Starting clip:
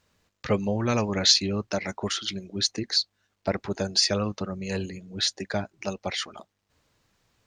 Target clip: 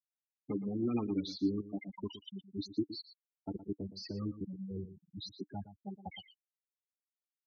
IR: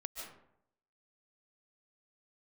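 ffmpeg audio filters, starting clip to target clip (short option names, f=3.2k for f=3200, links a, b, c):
-filter_complex "[0:a]afftfilt=real='re*gte(hypot(re,im),0.141)':imag='im*gte(hypot(re,im),0.141)':win_size=1024:overlap=0.75,asubboost=boost=6.5:cutoff=100,alimiter=limit=-19.5dB:level=0:latency=1:release=16,asplit=3[a][b][c];[a]bandpass=f=300:t=q:w=8,volume=0dB[d];[b]bandpass=f=870:t=q:w=8,volume=-6dB[e];[c]bandpass=f=2.24k:t=q:w=8,volume=-9dB[f];[d][e][f]amix=inputs=3:normalize=0,asplit=2[g][h];[h]aecho=0:1:117:0.211[i];[g][i]amix=inputs=2:normalize=0,volume=8.5dB"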